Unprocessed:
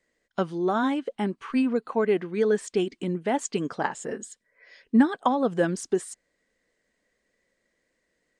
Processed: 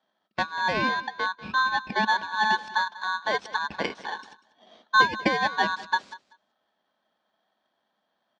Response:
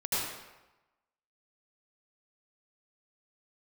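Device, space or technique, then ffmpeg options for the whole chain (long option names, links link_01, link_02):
ring modulator pedal into a guitar cabinet: -filter_complex "[0:a]aeval=exprs='val(0)*sgn(sin(2*PI*1300*n/s))':channel_layout=same,highpass=95,equalizer=frequency=120:width_type=q:width=4:gain=-8,equalizer=frequency=210:width_type=q:width=4:gain=9,equalizer=frequency=2000:width_type=q:width=4:gain=-7,equalizer=frequency=2900:width_type=q:width=4:gain=-7,lowpass=frequency=4000:width=0.5412,lowpass=frequency=4000:width=1.3066,asettb=1/sr,asplit=3[link_01][link_02][link_03];[link_01]atrim=end=0.734[link_04];[link_02]atrim=start=0.73:end=2.07,asetpts=PTS-STARTPTS,afade=type=in:duration=0.004:curve=qsin,afade=type=out:start_time=1.336:duration=0.004:curve=qsin,lowpass=6500[link_05];[link_03]atrim=start=2.066[link_06];[link_04][link_05]acrossfade=duration=0.004:curve1=hsin:curve2=qsin[link_07];[link_07][link_06]acrossfade=duration=0.004:curve1=qsin:curve2=hsin,aecho=1:1:192|384:0.126|0.0201,volume=1dB"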